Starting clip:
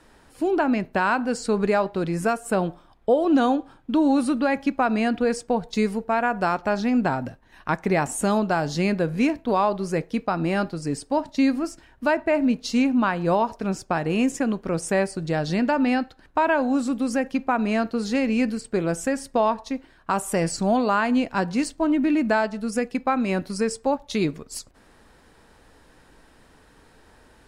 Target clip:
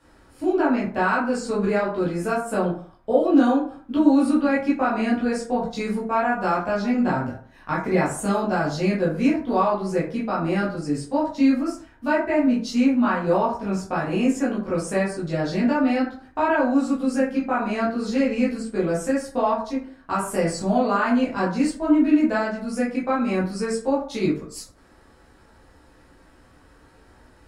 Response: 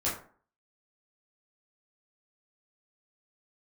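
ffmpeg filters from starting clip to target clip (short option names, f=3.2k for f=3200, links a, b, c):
-filter_complex "[1:a]atrim=start_sample=2205[a];[0:a][a]afir=irnorm=-1:irlink=0,volume=-7.5dB"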